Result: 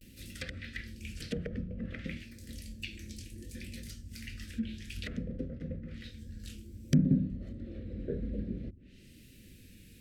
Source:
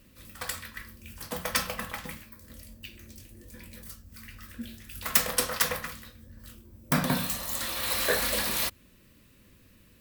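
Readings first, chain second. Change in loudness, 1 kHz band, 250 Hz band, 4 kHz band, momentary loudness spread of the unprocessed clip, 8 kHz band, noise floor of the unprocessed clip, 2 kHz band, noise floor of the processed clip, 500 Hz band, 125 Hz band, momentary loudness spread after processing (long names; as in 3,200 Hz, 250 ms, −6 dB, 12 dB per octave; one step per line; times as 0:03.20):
−9.5 dB, below −25 dB, +3.5 dB, −14.5 dB, 21 LU, −20.0 dB, −59 dBFS, −13.0 dB, −55 dBFS, −8.0 dB, +4.0 dB, 21 LU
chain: treble cut that deepens with the level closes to 310 Hz, closed at −28.5 dBFS
pitch vibrato 0.58 Hz 67 cents
Butterworth band-reject 940 Hz, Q 0.56
level +4.5 dB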